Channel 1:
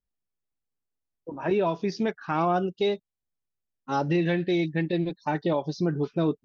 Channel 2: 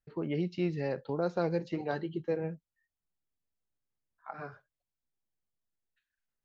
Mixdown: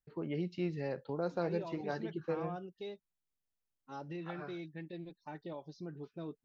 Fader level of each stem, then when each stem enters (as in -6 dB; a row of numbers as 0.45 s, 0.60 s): -19.0 dB, -4.5 dB; 0.00 s, 0.00 s